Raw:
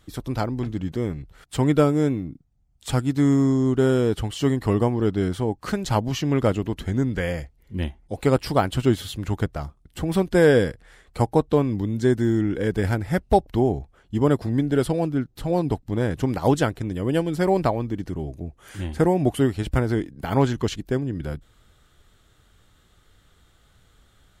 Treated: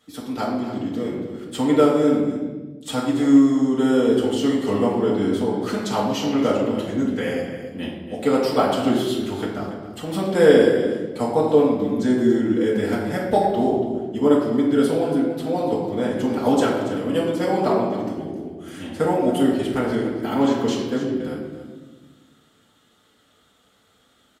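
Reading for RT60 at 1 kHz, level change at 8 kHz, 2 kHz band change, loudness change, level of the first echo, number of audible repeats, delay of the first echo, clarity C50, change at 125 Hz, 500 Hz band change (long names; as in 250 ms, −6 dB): 1.1 s, +1.0 dB, +0.5 dB, +2.5 dB, −11.5 dB, 1, 283 ms, 2.0 dB, −8.0 dB, +3.5 dB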